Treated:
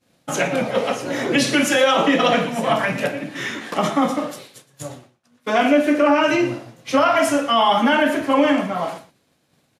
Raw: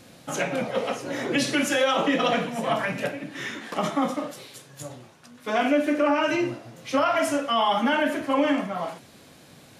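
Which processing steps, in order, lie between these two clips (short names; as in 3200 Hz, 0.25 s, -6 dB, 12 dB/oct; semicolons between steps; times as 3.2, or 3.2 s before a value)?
expander -37 dBFS; outdoor echo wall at 20 m, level -16 dB; gain +6 dB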